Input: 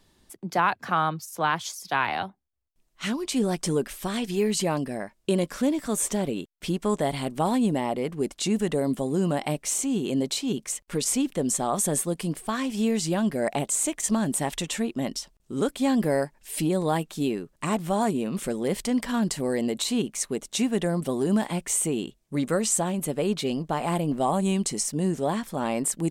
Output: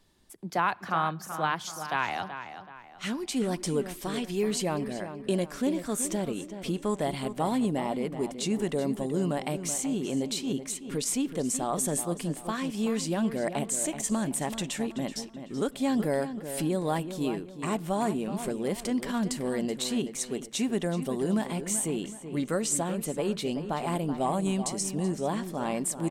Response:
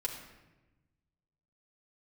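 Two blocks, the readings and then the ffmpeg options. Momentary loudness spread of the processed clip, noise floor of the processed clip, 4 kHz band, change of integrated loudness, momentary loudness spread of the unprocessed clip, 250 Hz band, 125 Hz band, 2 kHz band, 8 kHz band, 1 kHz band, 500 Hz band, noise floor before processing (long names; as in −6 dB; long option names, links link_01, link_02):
6 LU, −46 dBFS, −4.0 dB, −3.5 dB, 6 LU, −3.5 dB, −3.5 dB, −3.5 dB, −4.0 dB, −3.5 dB, −3.5 dB, −66 dBFS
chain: -filter_complex "[0:a]asplit=2[link_01][link_02];[link_02]adelay=379,lowpass=frequency=3500:poles=1,volume=-10dB,asplit=2[link_03][link_04];[link_04]adelay=379,lowpass=frequency=3500:poles=1,volume=0.4,asplit=2[link_05][link_06];[link_06]adelay=379,lowpass=frequency=3500:poles=1,volume=0.4,asplit=2[link_07][link_08];[link_08]adelay=379,lowpass=frequency=3500:poles=1,volume=0.4[link_09];[link_01][link_03][link_05][link_07][link_09]amix=inputs=5:normalize=0,asplit=2[link_10][link_11];[1:a]atrim=start_sample=2205[link_12];[link_11][link_12]afir=irnorm=-1:irlink=0,volume=-21.5dB[link_13];[link_10][link_13]amix=inputs=2:normalize=0,volume=-4.5dB"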